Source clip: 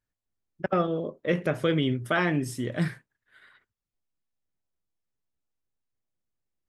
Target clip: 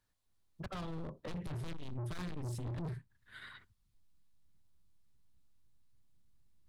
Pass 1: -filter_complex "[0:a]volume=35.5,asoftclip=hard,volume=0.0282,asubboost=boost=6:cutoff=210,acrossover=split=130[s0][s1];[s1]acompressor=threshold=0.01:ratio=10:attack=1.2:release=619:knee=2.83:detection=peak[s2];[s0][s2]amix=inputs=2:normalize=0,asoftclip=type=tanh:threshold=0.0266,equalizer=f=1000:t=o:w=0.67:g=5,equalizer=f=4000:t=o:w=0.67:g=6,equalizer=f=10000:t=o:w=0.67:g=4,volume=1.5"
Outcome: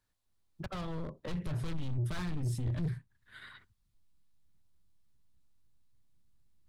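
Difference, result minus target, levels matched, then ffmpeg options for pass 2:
saturation: distortion -6 dB
-filter_complex "[0:a]volume=35.5,asoftclip=hard,volume=0.0282,asubboost=boost=6:cutoff=210,acrossover=split=130[s0][s1];[s1]acompressor=threshold=0.01:ratio=10:attack=1.2:release=619:knee=2.83:detection=peak[s2];[s0][s2]amix=inputs=2:normalize=0,asoftclip=type=tanh:threshold=0.00891,equalizer=f=1000:t=o:w=0.67:g=5,equalizer=f=4000:t=o:w=0.67:g=6,equalizer=f=10000:t=o:w=0.67:g=4,volume=1.5"

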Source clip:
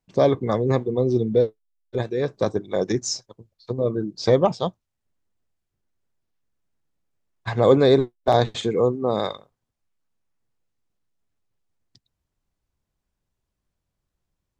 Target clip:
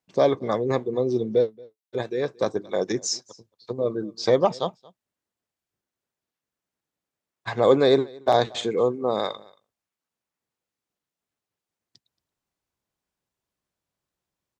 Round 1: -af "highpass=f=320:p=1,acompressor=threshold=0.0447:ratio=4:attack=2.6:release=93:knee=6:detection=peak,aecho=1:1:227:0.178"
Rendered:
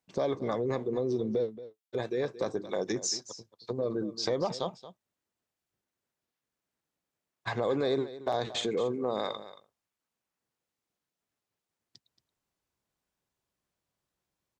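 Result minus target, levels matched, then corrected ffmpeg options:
compression: peak gain reduction +14 dB; echo-to-direct +9.5 dB
-af "highpass=f=320:p=1,aecho=1:1:227:0.0596"

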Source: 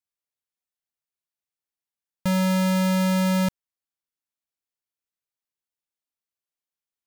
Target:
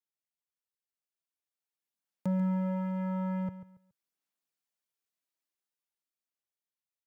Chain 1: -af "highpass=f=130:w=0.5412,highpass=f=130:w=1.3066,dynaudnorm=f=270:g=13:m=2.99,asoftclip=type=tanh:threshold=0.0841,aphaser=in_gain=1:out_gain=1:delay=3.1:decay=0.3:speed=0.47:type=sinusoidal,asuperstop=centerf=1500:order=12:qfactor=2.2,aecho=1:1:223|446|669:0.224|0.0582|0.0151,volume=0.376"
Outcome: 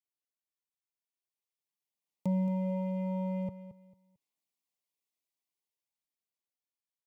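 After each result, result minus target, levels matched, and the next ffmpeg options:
echo 83 ms late; 2 kHz band -5.5 dB
-af "highpass=f=130:w=0.5412,highpass=f=130:w=1.3066,dynaudnorm=f=270:g=13:m=2.99,asoftclip=type=tanh:threshold=0.0841,aphaser=in_gain=1:out_gain=1:delay=3.1:decay=0.3:speed=0.47:type=sinusoidal,asuperstop=centerf=1500:order=12:qfactor=2.2,aecho=1:1:140|280|420:0.224|0.0582|0.0151,volume=0.376"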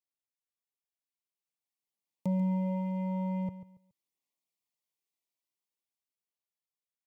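2 kHz band -4.5 dB
-af "highpass=f=130:w=0.5412,highpass=f=130:w=1.3066,dynaudnorm=f=270:g=13:m=2.99,asoftclip=type=tanh:threshold=0.0841,aphaser=in_gain=1:out_gain=1:delay=3.1:decay=0.3:speed=0.47:type=sinusoidal,aecho=1:1:140|280|420:0.224|0.0582|0.0151,volume=0.376"

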